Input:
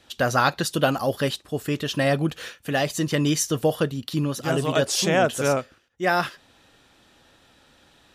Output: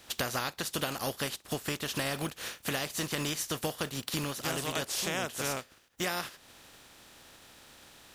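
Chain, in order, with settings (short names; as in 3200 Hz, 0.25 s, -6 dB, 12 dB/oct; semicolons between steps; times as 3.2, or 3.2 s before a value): spectral contrast lowered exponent 0.5; compressor 6:1, threshold -33 dBFS, peak gain reduction 17 dB; gain +2 dB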